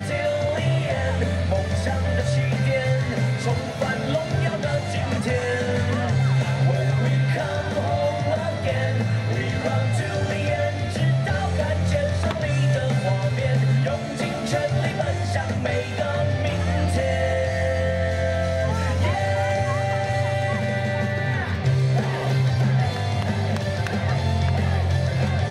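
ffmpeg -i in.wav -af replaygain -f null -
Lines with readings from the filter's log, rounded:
track_gain = +7.1 dB
track_peak = 0.297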